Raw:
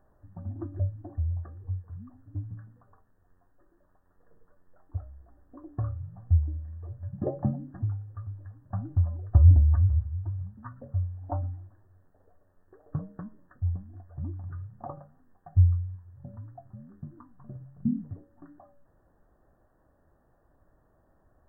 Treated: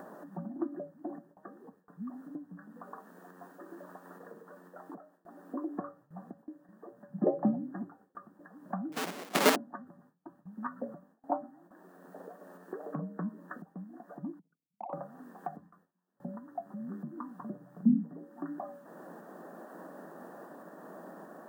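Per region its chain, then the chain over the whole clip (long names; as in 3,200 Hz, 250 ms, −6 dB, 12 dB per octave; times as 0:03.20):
0:08.92–0:09.56: mains-hum notches 50/100/150/200/250/300 Hz + log-companded quantiser 4 bits
0:14.39–0:14.93: spectral envelope exaggerated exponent 3 + resonant band-pass 1,000 Hz, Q 0.75 + downward compressor 10 to 1, threshold −55 dBFS
whole clip: upward compression, threshold −31 dBFS; Butterworth high-pass 170 Hz 72 dB per octave; noise gate with hold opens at −53 dBFS; level +3.5 dB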